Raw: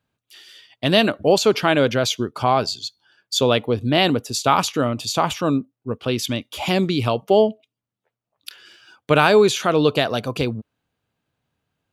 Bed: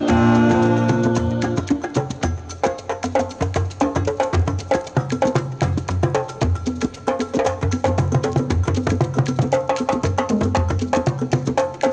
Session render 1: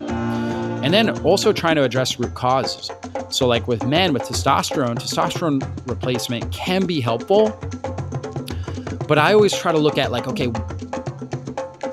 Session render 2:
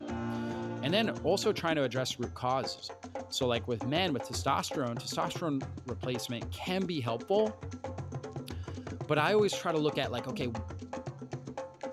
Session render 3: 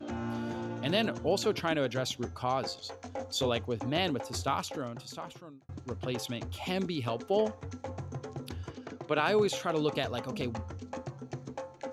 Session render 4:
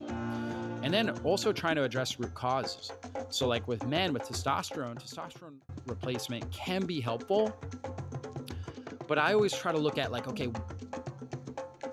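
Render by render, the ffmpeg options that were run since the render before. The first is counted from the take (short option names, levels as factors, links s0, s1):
-filter_complex "[1:a]volume=0.376[s0];[0:a][s0]amix=inputs=2:normalize=0"
-af "volume=0.224"
-filter_complex "[0:a]asettb=1/sr,asplit=3[s0][s1][s2];[s0]atrim=end=2.794[s3];[s1]atrim=start=2.79:end=3.49,asetpts=PTS-STARTPTS,afade=t=in:d=0.004:c=qsin,afade=t=out:st=0.696:d=0.004:c=qsin,asplit=2[s4][s5];[s5]adelay=21,volume=0.562[s6];[s4][s6]amix=inputs=2:normalize=0,atrim=end_sample=30870[s7];[s2]atrim=start=3.486[s8];[s3][s7]acrossfade=d=0.004:c1=hsin:c2=qsin[s9];[s9][s8]acrossfade=d=0.004:c1=qsin:c2=hsin,asplit=3[s10][s11][s12];[s10]afade=t=out:st=8.7:d=0.02[s13];[s11]highpass=210,lowpass=5700,afade=t=in:st=8.7:d=0.02,afade=t=out:st=9.25:d=0.02[s14];[s12]afade=t=in:st=9.25:d=0.02[s15];[s13][s14][s15]amix=inputs=3:normalize=0,asplit=2[s16][s17];[s16]atrim=end=5.69,asetpts=PTS-STARTPTS,afade=t=out:st=4.32:d=1.37[s18];[s17]atrim=start=5.69,asetpts=PTS-STARTPTS,afade=t=in:d=0.004:c=hsin[s19];[s18][s19]concat=n=2:v=0:a=1"
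-af "adynamicequalizer=threshold=0.00316:dfrequency=1500:dqfactor=4.2:tfrequency=1500:tqfactor=4.2:attack=5:release=100:ratio=0.375:range=2:mode=boostabove:tftype=bell"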